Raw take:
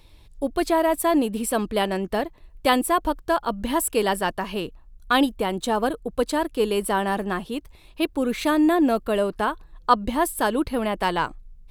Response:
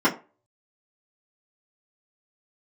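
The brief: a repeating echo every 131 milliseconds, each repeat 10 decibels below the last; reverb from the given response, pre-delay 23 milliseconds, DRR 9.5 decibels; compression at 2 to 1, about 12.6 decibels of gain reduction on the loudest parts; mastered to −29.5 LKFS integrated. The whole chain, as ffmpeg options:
-filter_complex "[0:a]acompressor=threshold=-35dB:ratio=2,aecho=1:1:131|262|393|524:0.316|0.101|0.0324|0.0104,asplit=2[link_01][link_02];[1:a]atrim=start_sample=2205,adelay=23[link_03];[link_02][link_03]afir=irnorm=-1:irlink=0,volume=-26.5dB[link_04];[link_01][link_04]amix=inputs=2:normalize=0,volume=2dB"

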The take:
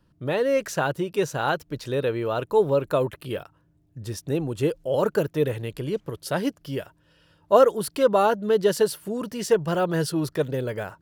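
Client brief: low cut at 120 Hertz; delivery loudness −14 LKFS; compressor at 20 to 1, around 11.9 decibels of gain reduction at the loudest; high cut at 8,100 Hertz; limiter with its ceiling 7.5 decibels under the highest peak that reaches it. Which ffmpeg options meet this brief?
ffmpeg -i in.wav -af "highpass=120,lowpass=8100,acompressor=threshold=-23dB:ratio=20,volume=18dB,alimiter=limit=-3dB:level=0:latency=1" out.wav

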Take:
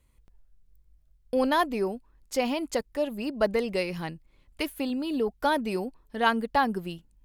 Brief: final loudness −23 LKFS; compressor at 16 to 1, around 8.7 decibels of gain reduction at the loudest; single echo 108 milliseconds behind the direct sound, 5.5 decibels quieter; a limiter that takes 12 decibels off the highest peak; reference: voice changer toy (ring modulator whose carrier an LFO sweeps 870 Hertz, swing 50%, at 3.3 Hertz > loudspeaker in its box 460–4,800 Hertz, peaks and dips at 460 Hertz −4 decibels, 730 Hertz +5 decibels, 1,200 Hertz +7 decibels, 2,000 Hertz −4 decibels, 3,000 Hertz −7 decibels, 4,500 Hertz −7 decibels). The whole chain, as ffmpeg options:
ffmpeg -i in.wav -af "acompressor=threshold=-27dB:ratio=16,alimiter=level_in=4.5dB:limit=-24dB:level=0:latency=1,volume=-4.5dB,aecho=1:1:108:0.531,aeval=exprs='val(0)*sin(2*PI*870*n/s+870*0.5/3.3*sin(2*PI*3.3*n/s))':channel_layout=same,highpass=460,equalizer=frequency=460:width_type=q:width=4:gain=-4,equalizer=frequency=730:width_type=q:width=4:gain=5,equalizer=frequency=1200:width_type=q:width=4:gain=7,equalizer=frequency=2000:width_type=q:width=4:gain=-4,equalizer=frequency=3000:width_type=q:width=4:gain=-7,equalizer=frequency=4500:width_type=q:width=4:gain=-7,lowpass=frequency=4800:width=0.5412,lowpass=frequency=4800:width=1.3066,volume=15dB" out.wav

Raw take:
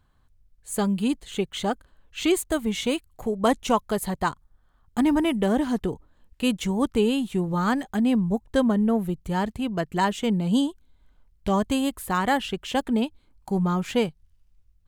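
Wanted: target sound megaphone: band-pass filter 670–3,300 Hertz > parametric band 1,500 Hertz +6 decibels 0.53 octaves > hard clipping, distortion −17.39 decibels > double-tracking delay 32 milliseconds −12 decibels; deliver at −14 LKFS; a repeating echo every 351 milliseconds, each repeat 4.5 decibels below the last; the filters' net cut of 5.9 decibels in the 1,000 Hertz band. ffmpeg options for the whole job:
ffmpeg -i in.wav -filter_complex "[0:a]highpass=670,lowpass=3300,equalizer=frequency=1000:width_type=o:gain=-7.5,equalizer=frequency=1500:width_type=o:width=0.53:gain=6,aecho=1:1:351|702|1053|1404|1755|2106|2457|2808|3159:0.596|0.357|0.214|0.129|0.0772|0.0463|0.0278|0.0167|0.01,asoftclip=type=hard:threshold=-21.5dB,asplit=2[link_01][link_02];[link_02]adelay=32,volume=-12dB[link_03];[link_01][link_03]amix=inputs=2:normalize=0,volume=18.5dB" out.wav

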